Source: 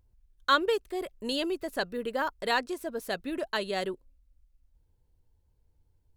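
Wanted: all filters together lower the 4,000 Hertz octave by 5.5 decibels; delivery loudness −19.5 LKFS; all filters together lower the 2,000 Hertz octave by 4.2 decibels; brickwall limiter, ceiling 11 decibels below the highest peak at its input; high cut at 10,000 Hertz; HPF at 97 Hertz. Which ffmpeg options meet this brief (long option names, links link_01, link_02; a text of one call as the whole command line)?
ffmpeg -i in.wav -af "highpass=97,lowpass=10000,equalizer=frequency=2000:width_type=o:gain=-5,equalizer=frequency=4000:width_type=o:gain=-5,volume=15.5dB,alimiter=limit=-8.5dB:level=0:latency=1" out.wav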